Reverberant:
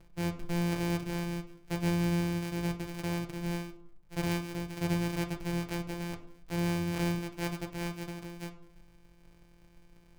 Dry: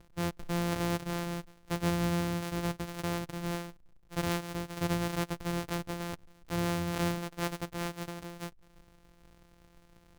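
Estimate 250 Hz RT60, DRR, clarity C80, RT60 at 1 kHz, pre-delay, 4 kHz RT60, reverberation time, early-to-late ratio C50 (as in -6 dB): 0.65 s, 3.0 dB, 15.0 dB, 0.65 s, 5 ms, 0.35 s, 0.65 s, 12.0 dB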